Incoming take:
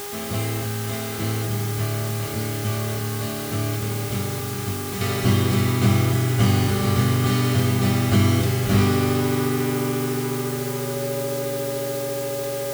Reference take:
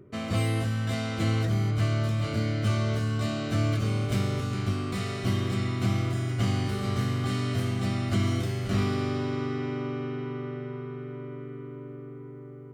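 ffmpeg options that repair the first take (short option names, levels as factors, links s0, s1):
-af "bandreject=f=406.8:t=h:w=4,bandreject=f=813.6:t=h:w=4,bandreject=f=1220.4:t=h:w=4,bandreject=f=1627.2:t=h:w=4,bandreject=f=2034:t=h:w=4,bandreject=f=560:w=30,afwtdn=0.018,asetnsamples=n=441:p=0,asendcmd='5.01 volume volume -8dB',volume=1"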